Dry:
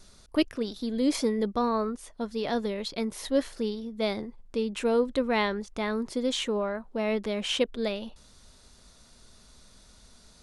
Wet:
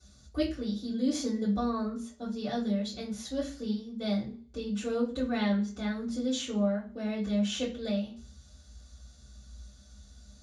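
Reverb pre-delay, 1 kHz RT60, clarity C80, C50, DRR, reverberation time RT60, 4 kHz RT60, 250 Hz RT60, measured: 3 ms, 0.40 s, 14.5 dB, 9.5 dB, -11.5 dB, 0.45 s, 0.40 s, 0.40 s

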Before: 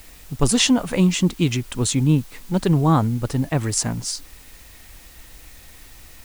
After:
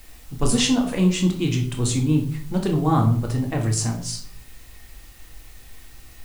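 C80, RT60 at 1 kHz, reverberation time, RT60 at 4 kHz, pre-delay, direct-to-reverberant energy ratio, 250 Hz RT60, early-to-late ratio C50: 13.0 dB, 0.50 s, 0.55 s, 0.40 s, 3 ms, 1.5 dB, 0.75 s, 9.0 dB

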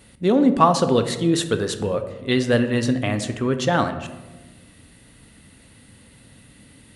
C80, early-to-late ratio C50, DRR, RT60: 12.5 dB, 10.5 dB, 8.0 dB, 1.2 s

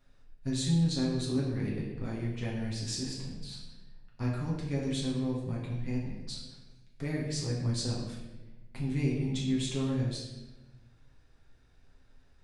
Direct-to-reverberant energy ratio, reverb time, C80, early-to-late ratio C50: -5.0 dB, 1.1 s, 4.5 dB, 2.5 dB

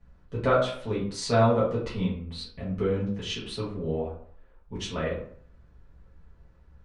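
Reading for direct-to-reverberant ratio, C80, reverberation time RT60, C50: -9.0 dB, 9.5 dB, 0.55 s, 5.0 dB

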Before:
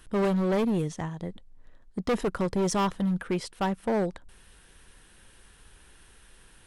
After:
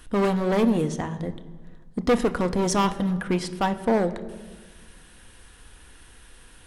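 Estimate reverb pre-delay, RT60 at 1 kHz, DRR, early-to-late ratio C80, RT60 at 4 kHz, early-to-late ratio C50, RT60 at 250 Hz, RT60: 3 ms, 1.5 s, 9.0 dB, 16.0 dB, 1.1 s, 15.0 dB, 1.8 s, 1.5 s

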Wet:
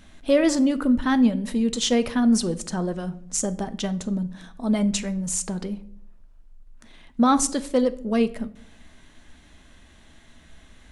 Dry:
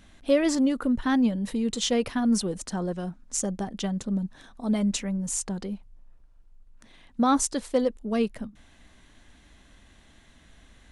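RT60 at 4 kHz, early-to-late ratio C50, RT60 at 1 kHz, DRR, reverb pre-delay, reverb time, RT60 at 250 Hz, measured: 0.40 s, 17.5 dB, 0.50 s, 10.5 dB, 3 ms, 0.65 s, 0.75 s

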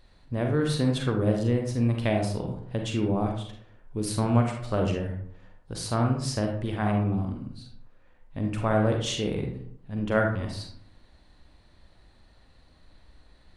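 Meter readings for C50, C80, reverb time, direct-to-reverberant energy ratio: 4.0 dB, 8.5 dB, 0.65 s, 2.0 dB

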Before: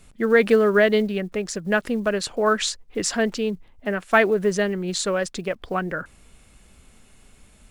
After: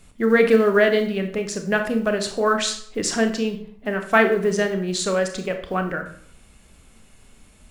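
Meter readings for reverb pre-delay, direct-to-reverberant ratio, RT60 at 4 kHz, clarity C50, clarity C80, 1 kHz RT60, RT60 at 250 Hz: 26 ms, 5.5 dB, 0.45 s, 9.0 dB, 12.5 dB, 0.55 s, 0.65 s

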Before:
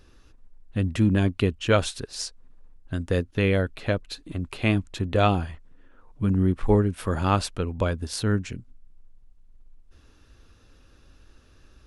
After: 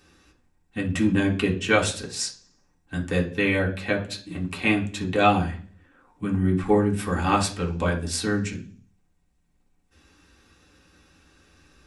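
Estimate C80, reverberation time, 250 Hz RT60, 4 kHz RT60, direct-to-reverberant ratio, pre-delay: 17.5 dB, 0.45 s, 0.65 s, 0.50 s, -3.0 dB, 3 ms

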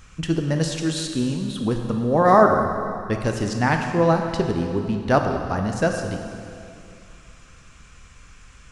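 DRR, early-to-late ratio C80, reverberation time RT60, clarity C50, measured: 3.5 dB, 5.5 dB, 2.5 s, 5.0 dB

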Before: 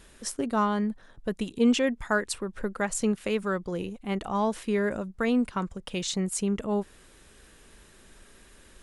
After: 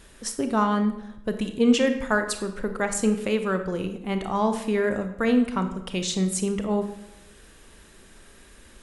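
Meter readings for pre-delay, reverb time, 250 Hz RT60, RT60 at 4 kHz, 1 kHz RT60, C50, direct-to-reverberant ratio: 26 ms, 0.85 s, 0.95 s, 0.65 s, 0.85 s, 9.0 dB, 7.0 dB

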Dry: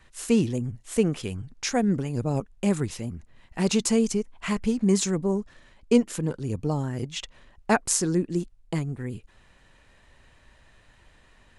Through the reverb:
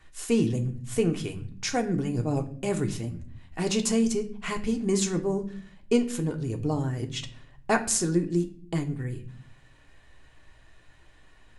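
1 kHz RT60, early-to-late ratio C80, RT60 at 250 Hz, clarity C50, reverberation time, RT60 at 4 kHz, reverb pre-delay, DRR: 0.45 s, 18.0 dB, 0.85 s, 14.0 dB, 0.50 s, 0.40 s, 3 ms, 4.0 dB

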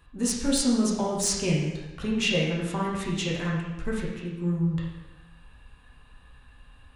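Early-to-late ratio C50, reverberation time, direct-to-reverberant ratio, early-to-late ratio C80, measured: 1.0 dB, 1.0 s, -4.5 dB, 4.0 dB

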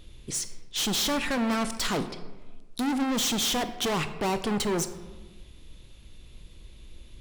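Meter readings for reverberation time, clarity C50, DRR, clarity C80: 1.3 s, 11.5 dB, 10.0 dB, 13.5 dB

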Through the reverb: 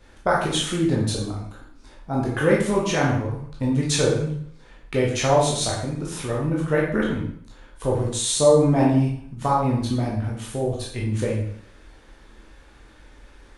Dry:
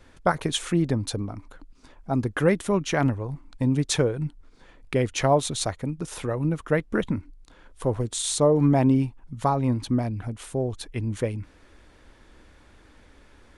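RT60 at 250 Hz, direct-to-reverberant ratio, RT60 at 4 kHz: 0.55 s, -4.0 dB, 0.55 s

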